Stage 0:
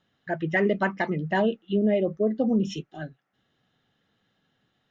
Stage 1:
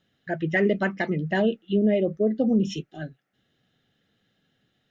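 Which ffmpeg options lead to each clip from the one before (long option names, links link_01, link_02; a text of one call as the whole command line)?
ffmpeg -i in.wav -af "equalizer=frequency=1000:width_type=o:width=0.65:gain=-10.5,volume=2dB" out.wav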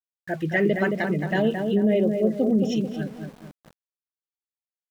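ffmpeg -i in.wav -filter_complex "[0:a]asplit=2[link_01][link_02];[link_02]adelay=220,lowpass=frequency=1500:poles=1,volume=-4.5dB,asplit=2[link_03][link_04];[link_04]adelay=220,lowpass=frequency=1500:poles=1,volume=0.44,asplit=2[link_05][link_06];[link_06]adelay=220,lowpass=frequency=1500:poles=1,volume=0.44,asplit=2[link_07][link_08];[link_08]adelay=220,lowpass=frequency=1500:poles=1,volume=0.44,asplit=2[link_09][link_10];[link_10]adelay=220,lowpass=frequency=1500:poles=1,volume=0.44[link_11];[link_01][link_03][link_05][link_07][link_09][link_11]amix=inputs=6:normalize=0,aeval=exprs='val(0)*gte(abs(val(0)),0.00631)':channel_layout=same" out.wav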